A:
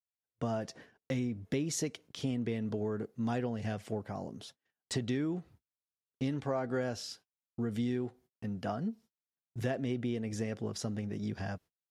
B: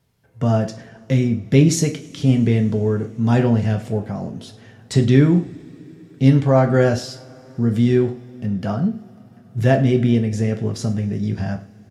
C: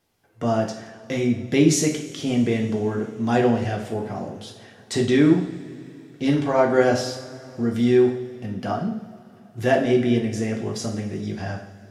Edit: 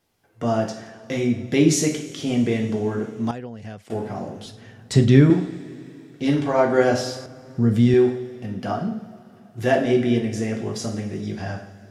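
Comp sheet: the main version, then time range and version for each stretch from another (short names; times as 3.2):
C
3.31–3.9 from A
4.46–5.3 from B
7.26–7.94 from B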